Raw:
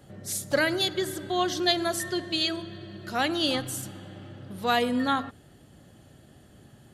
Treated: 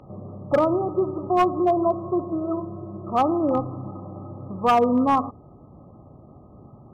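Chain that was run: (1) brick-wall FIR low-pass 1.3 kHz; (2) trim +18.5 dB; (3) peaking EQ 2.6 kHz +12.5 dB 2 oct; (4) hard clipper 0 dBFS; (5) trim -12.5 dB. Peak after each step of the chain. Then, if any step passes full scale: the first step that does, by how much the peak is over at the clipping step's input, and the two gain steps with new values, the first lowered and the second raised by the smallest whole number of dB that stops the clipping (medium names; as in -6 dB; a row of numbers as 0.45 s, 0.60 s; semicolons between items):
-13.0 dBFS, +5.5 dBFS, +8.0 dBFS, 0.0 dBFS, -12.5 dBFS; step 2, 8.0 dB; step 2 +10.5 dB, step 5 -4.5 dB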